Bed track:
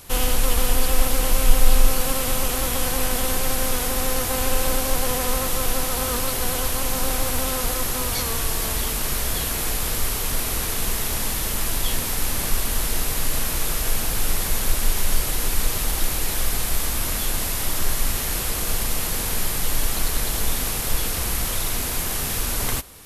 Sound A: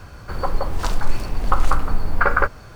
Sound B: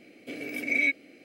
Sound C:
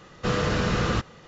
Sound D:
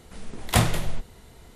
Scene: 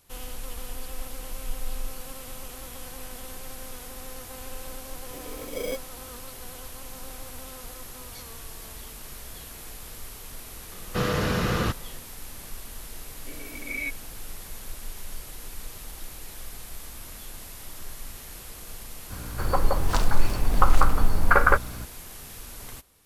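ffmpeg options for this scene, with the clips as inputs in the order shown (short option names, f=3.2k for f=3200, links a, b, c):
-filter_complex "[2:a]asplit=2[a][b];[0:a]volume=-17dB[c];[a]acrusher=samples=16:mix=1:aa=0.000001[d];[b]bandreject=f=6.6k:w=12[e];[1:a]aeval=exprs='val(0)+0.0141*(sin(2*PI*60*n/s)+sin(2*PI*2*60*n/s)/2+sin(2*PI*3*60*n/s)/3+sin(2*PI*4*60*n/s)/4+sin(2*PI*5*60*n/s)/5)':c=same[f];[d]atrim=end=1.24,asetpts=PTS-STARTPTS,volume=-6.5dB,afade=t=in:d=0.004:c=hsin,afade=t=out:st=1.236:d=0.004:c=hsin,adelay=213885S[g];[3:a]atrim=end=1.27,asetpts=PTS-STARTPTS,volume=-1dB,afade=t=in:d=0.004:c=hsin,afade=t=out:st=1.266:d=0.004:c=hsin,adelay=10710[h];[e]atrim=end=1.24,asetpts=PTS-STARTPTS,volume=-7.5dB,afade=t=in:d=0.004:c=hsin,afade=t=out:st=1.236:d=0.004:c=hsin,adelay=12990[i];[f]atrim=end=2.75,asetpts=PTS-STARTPTS,volume=-0.5dB,afade=t=in:d=0.004:c=hsin,afade=t=out:st=2.746:d=0.004:c=hsin,adelay=19100[j];[c][g][h][i][j]amix=inputs=5:normalize=0"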